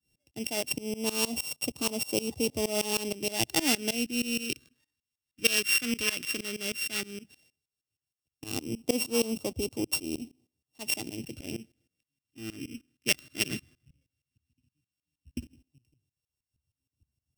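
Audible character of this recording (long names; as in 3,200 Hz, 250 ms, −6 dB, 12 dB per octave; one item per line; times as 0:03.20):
a buzz of ramps at a fixed pitch in blocks of 16 samples
tremolo saw up 6.4 Hz, depth 95%
phaser sweep stages 2, 0.13 Hz, lowest notch 770–1,600 Hz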